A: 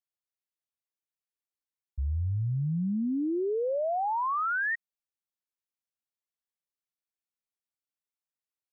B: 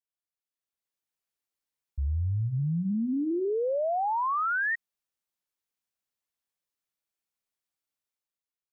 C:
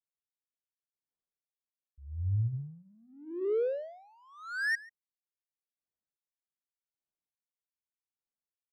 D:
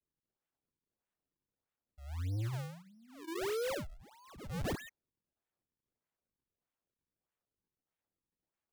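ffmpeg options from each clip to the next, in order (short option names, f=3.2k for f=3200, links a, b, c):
-af "bandreject=f=60:t=h:w=6,bandreject=f=120:t=h:w=6,bandreject=f=180:t=h:w=6,bandreject=f=240:t=h:w=6,bandreject=f=300:t=h:w=6,bandreject=f=360:t=h:w=6,alimiter=level_in=4.5dB:limit=-24dB:level=0:latency=1:release=14,volume=-4.5dB,dynaudnorm=f=130:g=11:m=10dB,volume=-6dB"
-filter_complex "[0:a]adynamicsmooth=sensitivity=5:basefreq=900,asplit=2[a][b];[b]adelay=139.9,volume=-20dB,highshelf=f=4k:g=-3.15[c];[a][c]amix=inputs=2:normalize=0,aeval=exprs='val(0)*pow(10,-33*(0.5-0.5*cos(2*PI*0.84*n/s))/20)':c=same"
-af "acrusher=samples=38:mix=1:aa=0.000001:lfo=1:lforange=60.8:lforate=1.6,asoftclip=type=tanh:threshold=-33.5dB"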